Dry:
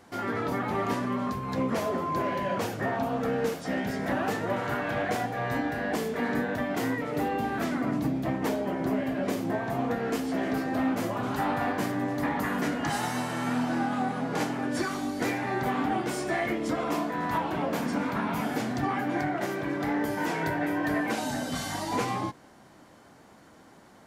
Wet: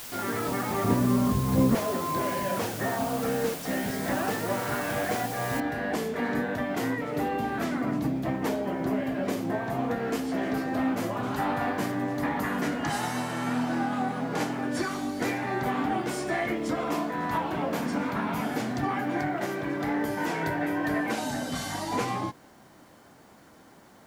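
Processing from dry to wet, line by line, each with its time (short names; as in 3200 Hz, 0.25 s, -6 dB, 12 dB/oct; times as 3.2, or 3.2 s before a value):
0.84–1.75 tilt -3.5 dB/oct
5.6 noise floor step -41 dB -68 dB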